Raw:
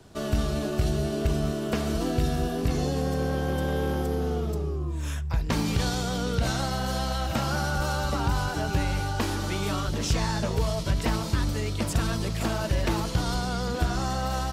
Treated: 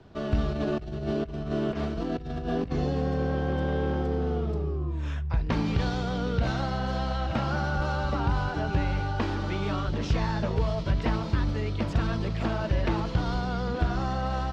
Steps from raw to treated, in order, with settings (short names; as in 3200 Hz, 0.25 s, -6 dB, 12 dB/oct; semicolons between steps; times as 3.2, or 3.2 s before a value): 0.52–2.72 negative-ratio compressor -29 dBFS, ratio -0.5; air absorption 220 m